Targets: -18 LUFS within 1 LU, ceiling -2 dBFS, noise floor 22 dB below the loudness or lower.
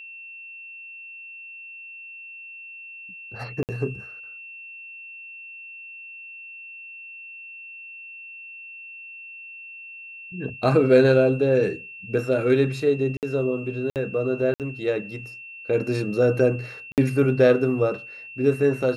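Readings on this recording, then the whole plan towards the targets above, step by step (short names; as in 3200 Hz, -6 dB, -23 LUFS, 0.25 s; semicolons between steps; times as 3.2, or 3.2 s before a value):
dropouts 5; longest dropout 58 ms; steady tone 2700 Hz; tone level -38 dBFS; loudness -22.5 LUFS; peak -5.5 dBFS; loudness target -18.0 LUFS
-> interpolate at 3.63/13.17/13.9/14.54/16.92, 58 ms; notch 2700 Hz, Q 30; gain +4.5 dB; limiter -2 dBFS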